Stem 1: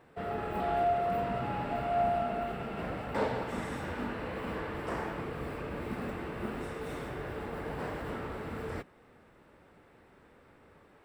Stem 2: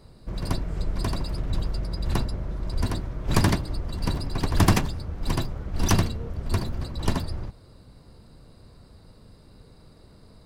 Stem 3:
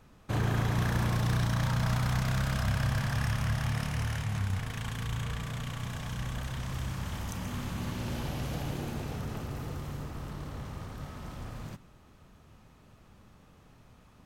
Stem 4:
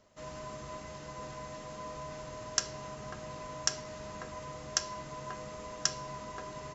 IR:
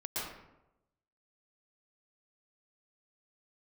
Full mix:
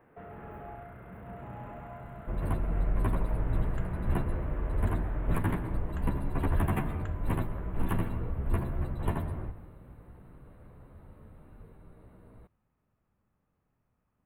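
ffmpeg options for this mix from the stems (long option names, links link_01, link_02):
-filter_complex "[0:a]acrossover=split=160[link_01][link_02];[link_02]acompressor=threshold=-40dB:ratio=6[link_03];[link_01][link_03]amix=inputs=2:normalize=0,asoftclip=type=tanh:threshold=-38.5dB,volume=-4dB,afade=type=out:start_time=5.49:duration=0.41:silence=0.281838,asplit=2[link_04][link_05];[link_05]volume=-6dB[link_06];[1:a]highshelf=frequency=11000:gain=-3.5,asplit=2[link_07][link_08];[link_08]adelay=11.6,afreqshift=0.45[link_09];[link_07][link_09]amix=inputs=2:normalize=1,adelay=2000,volume=0dB,asplit=2[link_10][link_11];[link_11]volume=-16dB[link_12];[2:a]acompressor=threshold=-33dB:ratio=2,volume=-20dB[link_13];[3:a]adelay=1200,volume=-9.5dB[link_14];[4:a]atrim=start_sample=2205[link_15];[link_06][link_12]amix=inputs=2:normalize=0[link_16];[link_16][link_15]afir=irnorm=-1:irlink=0[link_17];[link_04][link_10][link_13][link_14][link_17]amix=inputs=5:normalize=0,asuperstop=centerf=5400:order=4:qfactor=0.59,alimiter=limit=-18dB:level=0:latency=1:release=240"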